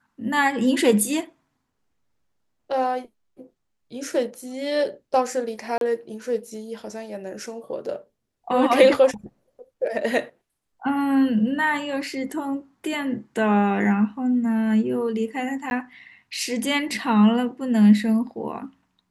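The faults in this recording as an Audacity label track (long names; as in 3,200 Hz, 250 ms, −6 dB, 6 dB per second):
5.780000	5.810000	drop-out 32 ms
15.700000	15.710000	drop-out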